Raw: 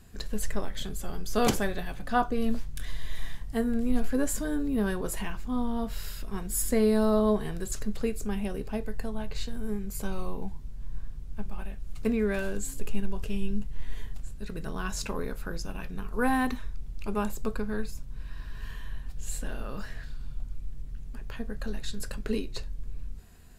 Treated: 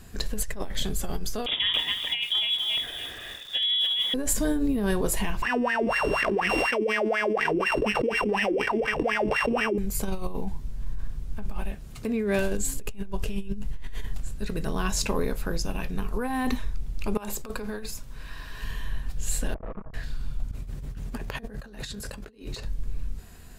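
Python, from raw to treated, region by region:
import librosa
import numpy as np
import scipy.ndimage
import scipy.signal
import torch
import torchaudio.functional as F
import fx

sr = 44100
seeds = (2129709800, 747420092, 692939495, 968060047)

y = fx.chain(x, sr, fx.highpass(hz=90.0, slope=24),
    fx.freq_invert(carrier_hz=3600),
    fx.echo_crushed(ms=278, feedback_pct=35, bits=8, wet_db=-7.0), at=(1.46, 4.14))
y = fx.chain(y, sr, fx.sample_sort(block=16),
    fx.wah_lfo(hz=4.1, low_hz=310.0, high_hz=1900.0, q=12.0),
    fx.env_flatten(amount_pct=100), at=(5.42, 9.78))
y = fx.chain(y, sr, fx.highpass(hz=150.0, slope=6),
    fx.low_shelf(hz=390.0, db=3.5), at=(11.71, 12.39))
y = fx.chain(y, sr, fx.low_shelf(hz=270.0, db=-10.0),
    fx.hum_notches(base_hz=50, count=8),
    fx.over_compress(threshold_db=-37.0, ratio=-0.5), at=(17.17, 18.64))
y = fx.chain(y, sr, fx.ellip_lowpass(hz=1200.0, order=4, stop_db=40),
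    fx.comb(ms=6.2, depth=0.64),
    fx.tube_stage(drive_db=36.0, bias=0.4), at=(19.54, 19.94))
y = fx.chain(y, sr, fx.highpass(hz=41.0, slope=12),
    fx.over_compress(threshold_db=-42.0, ratio=-0.5),
    fx.peak_eq(hz=710.0, db=3.0, octaves=2.8), at=(20.51, 22.65))
y = fx.low_shelf(y, sr, hz=330.0, db=-2.0)
y = fx.over_compress(y, sr, threshold_db=-30.0, ratio=-1.0)
y = fx.dynamic_eq(y, sr, hz=1400.0, q=2.7, threshold_db=-54.0, ratio=4.0, max_db=-6)
y = F.gain(torch.from_numpy(y), 6.0).numpy()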